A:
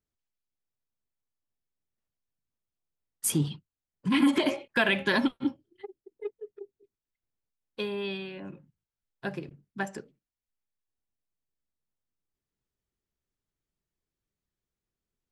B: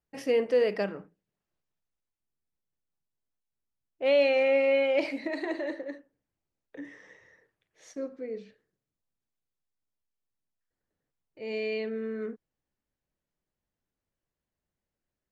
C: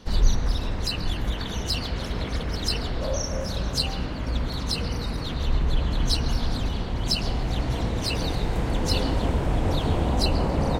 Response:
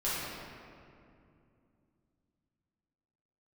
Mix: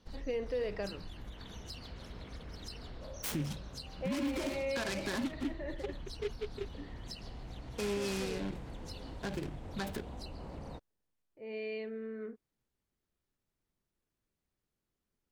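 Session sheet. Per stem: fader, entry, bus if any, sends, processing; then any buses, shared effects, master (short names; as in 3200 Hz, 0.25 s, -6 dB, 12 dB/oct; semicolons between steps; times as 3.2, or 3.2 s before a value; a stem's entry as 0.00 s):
+1.5 dB, 0.00 s, bus A, no send, bell 260 Hz +2.5 dB; noise-modulated delay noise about 2200 Hz, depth 0.069 ms
-7.5 dB, 0.00 s, bus A, no send, low-pass opened by the level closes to 1400 Hz, open at -21 dBFS
-17.0 dB, 0.00 s, no bus, no send, compressor, threshold -24 dBFS, peak gain reduction 12.5 dB
bus A: 0.0 dB, compressor 4:1, threshold -29 dBFS, peak gain reduction 12.5 dB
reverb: off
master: limiter -27 dBFS, peak gain reduction 8.5 dB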